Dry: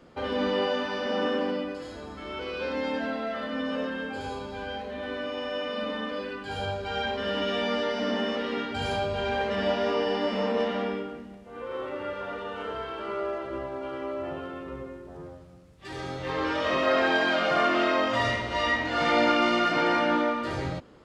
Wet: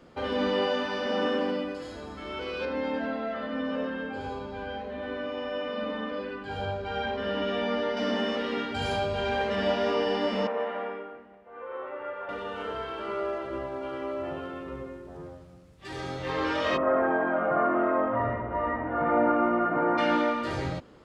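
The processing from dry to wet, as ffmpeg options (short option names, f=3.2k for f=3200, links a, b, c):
-filter_complex "[0:a]asettb=1/sr,asplit=3[a][b][c];[a]atrim=end=2.654[d];[b]atrim=start=2.65:end=7.97,asetpts=PTS-STARTPTS,afade=t=in:d=0.004:c=qsin,afade=t=out:st=5.316:d=0.004:c=qsin,lowpass=f=2.1k:p=1[e];[c]atrim=start=7.966[f];[d][e]acrossfade=d=0.004:c1=hsin:c2=qsin[g];[g][f]acrossfade=d=0.004:c1=qsin:c2=hsin,asettb=1/sr,asplit=3[h][i][j];[h]atrim=end=10.474[k];[i]atrim=start=10.47:end=12.29,asetpts=PTS-STARTPTS,afade=t=in:d=0.004:c=qsin,afade=t=out:st=1.816:d=0.004:c=qsin,acrossover=split=440 2300:gain=0.158 1 0.0631[l][m][n];[l][m][n]amix=inputs=3:normalize=0[o];[j]atrim=start=12.286[p];[k][o]acrossfade=d=0.004:c1=hsin:c2=qsin[q];[q][p]acrossfade=d=0.004:c1=qsin:c2=hsin,asplit=3[r][s][t];[r]afade=t=out:st=16.76:d=0.02[u];[s]lowpass=f=1.4k:w=0.5412,lowpass=f=1.4k:w=1.3066,afade=t=in:st=16.76:d=0.02,afade=t=out:st=19.97:d=0.02[v];[t]afade=t=in:st=19.97:d=0.02[w];[u][v][w]amix=inputs=3:normalize=0"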